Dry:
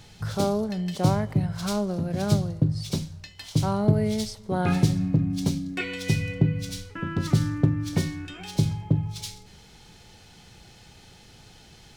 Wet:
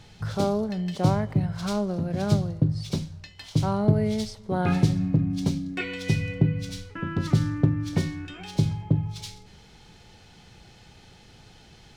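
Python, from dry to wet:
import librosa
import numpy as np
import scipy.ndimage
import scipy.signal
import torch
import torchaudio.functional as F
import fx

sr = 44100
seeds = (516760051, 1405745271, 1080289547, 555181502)

y = fx.high_shelf(x, sr, hz=7300.0, db=-10.0)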